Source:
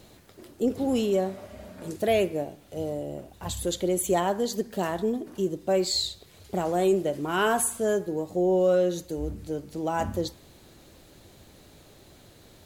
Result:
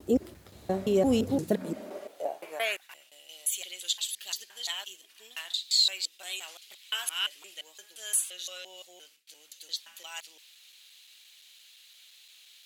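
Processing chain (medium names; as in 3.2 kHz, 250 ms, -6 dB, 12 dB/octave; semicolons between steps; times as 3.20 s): slices played last to first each 173 ms, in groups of 4; high-pass sweep 65 Hz -> 2.9 kHz, 1.04–3.06 s; gate with hold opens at -46 dBFS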